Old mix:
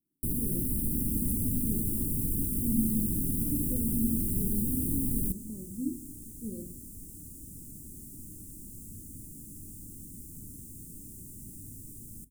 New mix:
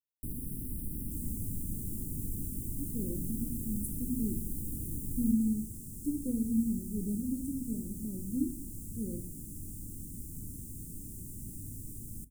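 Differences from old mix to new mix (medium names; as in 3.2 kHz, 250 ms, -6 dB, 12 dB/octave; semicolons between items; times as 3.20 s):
speech: entry +2.55 s; first sound -10.5 dB; master: add bass shelf 140 Hz +6 dB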